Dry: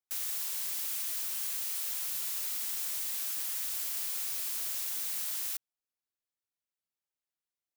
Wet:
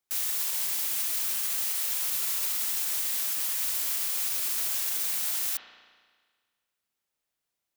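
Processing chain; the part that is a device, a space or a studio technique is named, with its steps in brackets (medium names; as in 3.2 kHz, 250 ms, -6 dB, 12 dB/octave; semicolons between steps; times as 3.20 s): limiter into clipper (peak limiter -27 dBFS, peak gain reduction 4 dB; hard clipper -30 dBFS, distortion -24 dB); spring tank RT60 1.6 s, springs 34 ms, chirp 50 ms, DRR 4.5 dB; trim +8 dB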